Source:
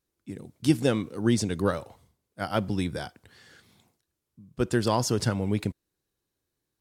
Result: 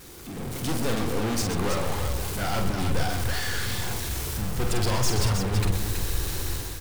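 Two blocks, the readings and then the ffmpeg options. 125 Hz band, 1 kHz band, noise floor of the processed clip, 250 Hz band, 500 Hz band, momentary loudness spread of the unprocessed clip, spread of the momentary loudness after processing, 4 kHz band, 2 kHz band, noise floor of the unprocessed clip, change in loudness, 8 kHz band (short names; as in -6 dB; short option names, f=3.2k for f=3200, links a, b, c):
+4.0 dB, +3.0 dB, -36 dBFS, -3.0 dB, -1.0 dB, 13 LU, 5 LU, +6.0 dB, +5.5 dB, -83 dBFS, 0.0 dB, +7.5 dB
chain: -filter_complex "[0:a]aeval=exprs='val(0)+0.5*0.0141*sgn(val(0))':c=same,aeval=exprs='(tanh(50.1*val(0)+0.3)-tanh(0.3))/50.1':c=same,alimiter=level_in=10dB:limit=-24dB:level=0:latency=1,volume=-10dB,bandreject=f=620:w=12,dynaudnorm=f=160:g=5:m=12dB,asplit=2[a][b];[b]aecho=0:1:47|127|327:0.531|0.355|0.473[c];[a][c]amix=inputs=2:normalize=0,asubboost=boost=6:cutoff=79,volume=-2dB"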